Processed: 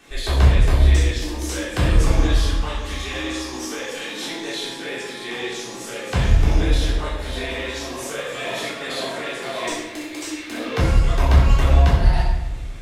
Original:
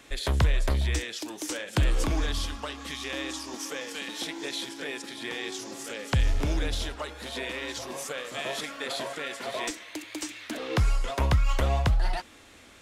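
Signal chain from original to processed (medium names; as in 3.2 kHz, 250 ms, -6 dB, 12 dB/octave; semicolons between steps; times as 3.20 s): simulated room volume 480 m³, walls mixed, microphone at 3.6 m; trim -2.5 dB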